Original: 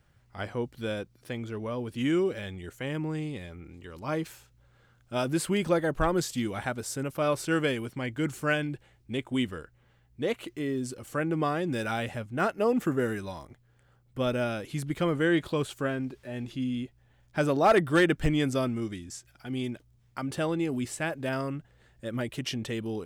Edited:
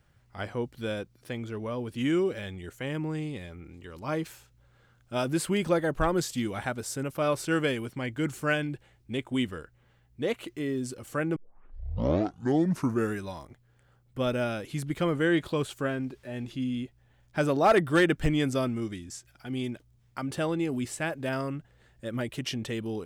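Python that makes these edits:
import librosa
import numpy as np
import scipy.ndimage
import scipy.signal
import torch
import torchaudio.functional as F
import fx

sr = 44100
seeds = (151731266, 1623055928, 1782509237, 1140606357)

y = fx.edit(x, sr, fx.tape_start(start_s=11.36, length_s=1.82), tone=tone)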